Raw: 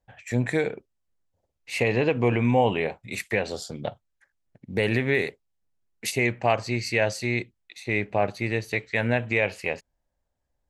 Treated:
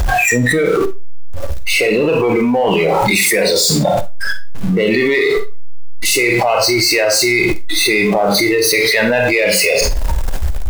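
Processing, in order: zero-crossing step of -23.5 dBFS; spectral noise reduction 18 dB; Schroeder reverb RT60 0.31 s, combs from 33 ms, DRR 6.5 dB; in parallel at -10.5 dB: hard clip -20.5 dBFS, distortion -10 dB; on the sum: fast leveller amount 100%

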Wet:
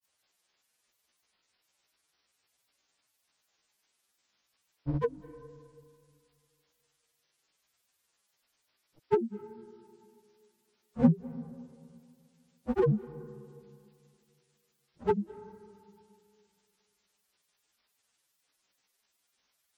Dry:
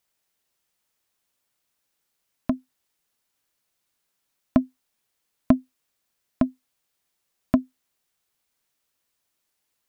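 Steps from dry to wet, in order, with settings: inharmonic rescaling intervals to 83%; bell 200 Hz -2.5 dB 0.67 oct; in parallel at -2 dB: compressor, threshold -36 dBFS, peak gain reduction 18.5 dB; on the sum: time stretch by phase-locked vocoder 2×; grains 0.1 s, grains 20/s, pitch spread up and down by 12 st; on a send at -17 dB: reverb RT60 2.4 s, pre-delay 0.186 s; on the sum: gain -1.5 dB

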